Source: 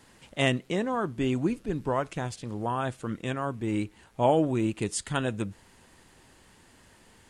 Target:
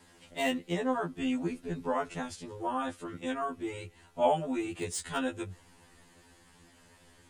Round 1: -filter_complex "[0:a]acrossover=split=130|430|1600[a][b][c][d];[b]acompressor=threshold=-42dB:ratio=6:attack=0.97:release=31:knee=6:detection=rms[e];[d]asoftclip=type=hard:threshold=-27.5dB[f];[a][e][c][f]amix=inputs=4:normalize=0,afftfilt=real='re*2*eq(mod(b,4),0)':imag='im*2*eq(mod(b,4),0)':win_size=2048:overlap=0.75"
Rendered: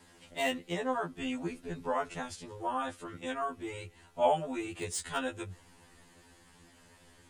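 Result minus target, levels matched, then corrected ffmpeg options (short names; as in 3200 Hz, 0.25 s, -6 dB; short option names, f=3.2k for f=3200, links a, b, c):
compressor: peak gain reduction +9 dB
-filter_complex "[0:a]acrossover=split=130|430|1600[a][b][c][d];[b]acompressor=threshold=-31dB:ratio=6:attack=0.97:release=31:knee=6:detection=rms[e];[d]asoftclip=type=hard:threshold=-27.5dB[f];[a][e][c][f]amix=inputs=4:normalize=0,afftfilt=real='re*2*eq(mod(b,4),0)':imag='im*2*eq(mod(b,4),0)':win_size=2048:overlap=0.75"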